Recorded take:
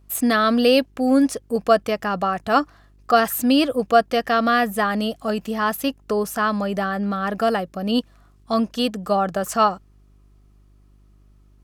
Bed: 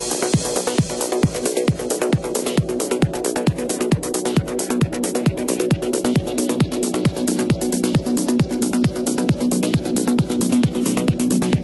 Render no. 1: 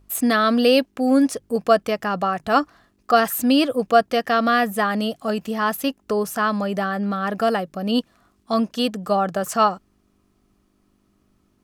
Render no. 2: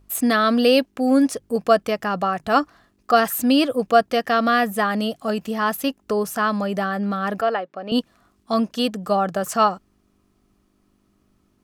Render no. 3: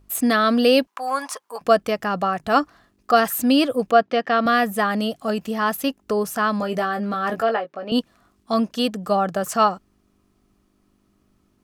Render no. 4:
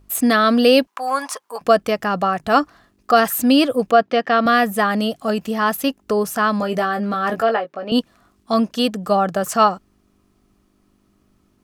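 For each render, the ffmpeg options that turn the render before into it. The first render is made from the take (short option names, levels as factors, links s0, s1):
-af "bandreject=f=50:t=h:w=4,bandreject=f=100:t=h:w=4,bandreject=f=150:t=h:w=4"
-filter_complex "[0:a]asettb=1/sr,asplit=3[s0][s1][s2];[s0]atrim=end=7.414[s3];[s1]atrim=start=7.41:end=7.92,asetpts=PTS-STARTPTS,afade=t=in:d=0.004:c=qsin,afade=t=out:st=0.506:d=0.004:c=qsin,highpass=410,lowpass=2800[s4];[s2]atrim=start=7.916[s5];[s3][s4]acrossfade=d=0.004:c1=hsin:c2=qsin[s6];[s6][s5]acrossfade=d=0.004:c1=qsin:c2=hsin"
-filter_complex "[0:a]asettb=1/sr,asplit=3[s0][s1][s2];[s0]atrim=end=0.874[s3];[s1]atrim=start=0.87:end=1.61,asetpts=PTS-STARTPTS,afade=t=in:d=0.004:c=qsin,afade=t=out:st=0.736:d=0.004:c=qsin,highpass=f=1000:t=q:w=5.9[s4];[s2]atrim=start=1.606[s5];[s3][s4]acrossfade=d=0.004:c1=hsin:c2=qsin[s6];[s6][s5]acrossfade=d=0.004:c1=qsin:c2=hsin,asettb=1/sr,asplit=3[s7][s8][s9];[s7]atrim=end=3.914[s10];[s8]atrim=start=3.91:end=4.46,asetpts=PTS-STARTPTS,afade=t=in:d=0.004:c=qsin,afade=t=out:st=0.546:d=0.004:c=qsin,highpass=150,lowpass=3800[s11];[s9]atrim=start=4.456[s12];[s10][s11]acrossfade=d=0.004:c1=hsin:c2=qsin[s13];[s13][s12]acrossfade=d=0.004:c1=qsin:c2=hsin,asettb=1/sr,asplit=3[s14][s15][s16];[s14]atrim=end=6.584[s17];[s15]atrim=start=6.58:end=7.9,asetpts=PTS-STARTPTS,afade=t=in:d=0.004:c=qsin,afade=t=out:st=1.316:d=0.004:c=qsin,asplit=2[s18][s19];[s19]adelay=18,volume=0.501[s20];[s18][s20]amix=inputs=2:normalize=0,atrim=end_sample=58212[s21];[s16]atrim=start=7.896[s22];[s17][s21]acrossfade=d=0.004:c1=hsin:c2=qsin[s23];[s23][s22]acrossfade=d=0.004:c1=qsin:c2=hsin"
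-af "volume=1.41,alimiter=limit=0.794:level=0:latency=1"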